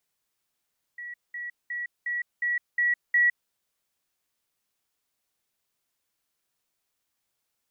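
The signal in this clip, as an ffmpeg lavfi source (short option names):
-f lavfi -i "aevalsrc='pow(10,(-35.5+3*floor(t/0.36))/20)*sin(2*PI*1930*t)*clip(min(mod(t,0.36),0.16-mod(t,0.36))/0.005,0,1)':d=2.52:s=44100"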